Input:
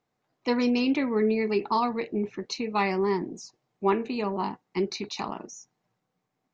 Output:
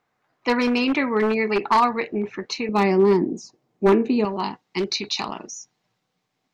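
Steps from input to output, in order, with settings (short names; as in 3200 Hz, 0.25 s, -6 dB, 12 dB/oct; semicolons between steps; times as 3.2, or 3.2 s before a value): one-sided fold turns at -20 dBFS; bell 1500 Hz +9.5 dB 2 oct, from 2.69 s 280 Hz, from 4.25 s 3800 Hz; gain +2 dB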